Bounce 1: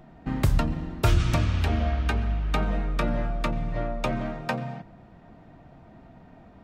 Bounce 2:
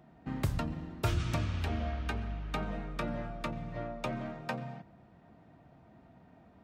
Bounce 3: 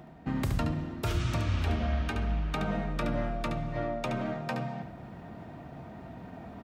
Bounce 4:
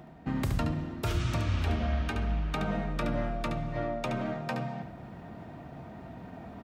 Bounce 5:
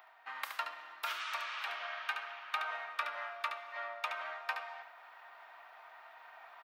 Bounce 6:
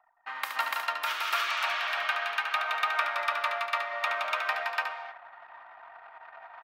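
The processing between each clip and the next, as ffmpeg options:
ffmpeg -i in.wav -af "highpass=63,volume=-8dB" out.wav
ffmpeg -i in.wav -af "alimiter=level_in=3dB:limit=-24dB:level=0:latency=1:release=88,volume=-3dB,areverse,acompressor=mode=upward:threshold=-42dB:ratio=2.5,areverse,aecho=1:1:72:0.447,volume=6dB" out.wav
ffmpeg -i in.wav -af anull out.wav
ffmpeg -i in.wav -af "highpass=frequency=1000:width=0.5412,highpass=frequency=1000:width=1.3066,equalizer=frequency=7600:width=0.85:gain=-12,volume=3dB" out.wav
ffmpeg -i in.wav -filter_complex "[0:a]anlmdn=0.00158,asplit=2[link_01][link_02];[link_02]aecho=0:1:169.1|291.5:0.631|1[link_03];[link_01][link_03]amix=inputs=2:normalize=0,volume=6.5dB" out.wav

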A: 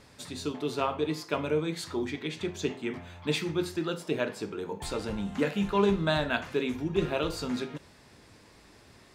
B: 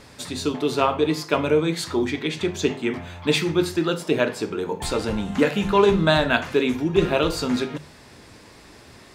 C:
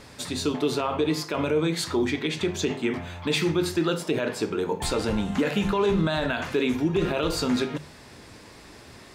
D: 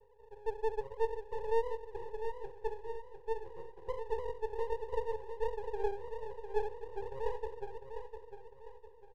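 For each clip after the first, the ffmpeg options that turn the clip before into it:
ffmpeg -i in.wav -af "bandreject=frequency=50:width_type=h:width=6,bandreject=frequency=100:width_type=h:width=6,bandreject=frequency=150:width_type=h:width=6,bandreject=frequency=200:width_type=h:width=6,volume=9dB" out.wav
ffmpeg -i in.wav -af "alimiter=limit=-15dB:level=0:latency=1:release=53" out.wav
ffmpeg -i in.wav -af "asuperpass=centerf=460:order=8:qfactor=4.5,aeval=exprs='max(val(0),0)':channel_layout=same,aecho=1:1:702|1404|2106|2808:0.398|0.155|0.0606|0.0236,volume=-1dB" out.wav

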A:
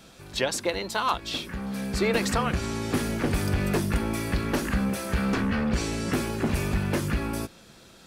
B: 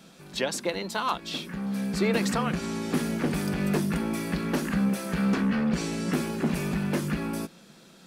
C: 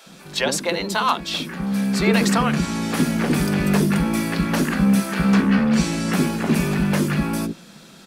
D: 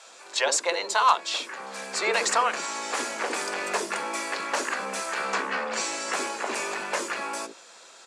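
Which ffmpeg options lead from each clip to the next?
ffmpeg -i in.wav -af "lowshelf=frequency=130:width_type=q:width=3:gain=-8.5,volume=-2.5dB" out.wav
ffmpeg -i in.wav -filter_complex "[0:a]acrossover=split=440[link_01][link_02];[link_01]adelay=60[link_03];[link_03][link_02]amix=inputs=2:normalize=0,volume=8.5dB" out.wav
ffmpeg -i in.wav -af "highpass=frequency=460:width=0.5412,highpass=frequency=460:width=1.3066,equalizer=frequency=1000:width_type=q:width=4:gain=4,equalizer=frequency=3300:width_type=q:width=4:gain=-3,equalizer=frequency=7200:width_type=q:width=4:gain=7,lowpass=frequency=9200:width=0.5412,lowpass=frequency=9200:width=1.3066,volume=-2dB" out.wav

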